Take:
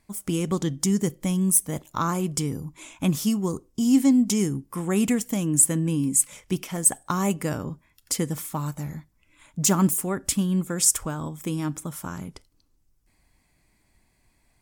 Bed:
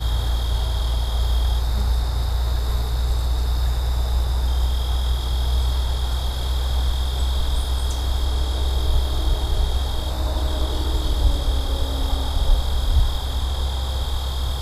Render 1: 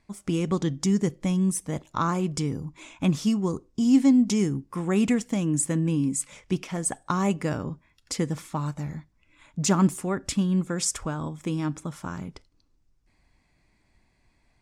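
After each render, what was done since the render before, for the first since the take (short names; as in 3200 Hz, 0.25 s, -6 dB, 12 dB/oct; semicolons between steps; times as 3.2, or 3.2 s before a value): LPF 5500 Hz 12 dB/oct; notch 3100 Hz, Q 26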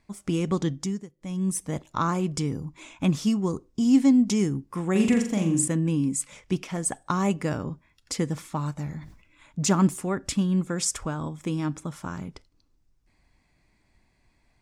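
0.67–1.57 dip -23 dB, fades 0.41 s; 4.91–5.68 flutter echo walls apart 7.3 m, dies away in 0.48 s; 8.98–9.71 sustainer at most 87 dB/s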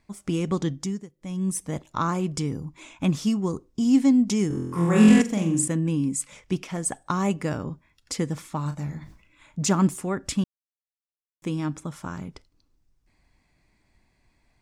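4.48–5.22 flutter echo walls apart 4 m, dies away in 1.2 s; 8.62–9.62 doubler 35 ms -10 dB; 10.44–11.42 mute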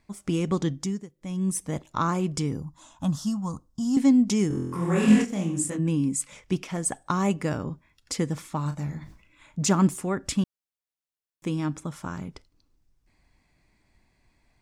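2.62–3.97 fixed phaser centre 960 Hz, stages 4; 4.76–5.78 detuned doubles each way 42 cents -> 54 cents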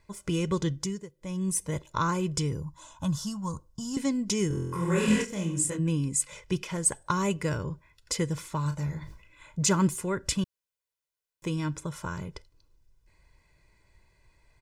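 dynamic EQ 650 Hz, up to -6 dB, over -39 dBFS, Q 0.86; comb 2 ms, depth 67%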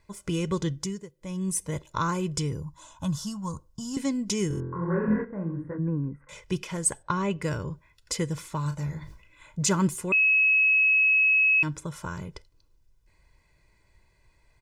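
4.6–6.29 elliptic low-pass 1700 Hz, stop band 50 dB; 7.02–7.42 LPF 3600 Hz; 10.12–11.63 bleep 2570 Hz -17.5 dBFS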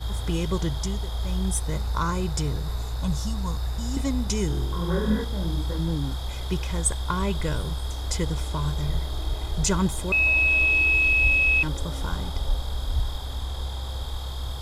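add bed -7.5 dB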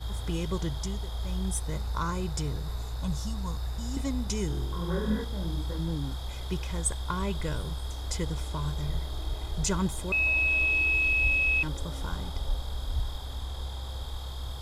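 gain -5 dB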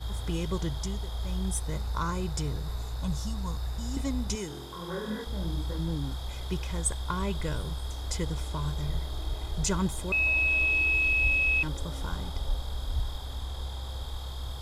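4.35–5.27 HPF 370 Hz 6 dB/oct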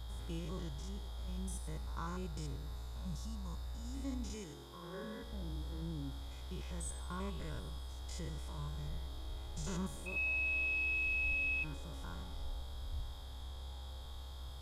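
stepped spectrum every 0.1 s; resonator 280 Hz, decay 1 s, mix 70%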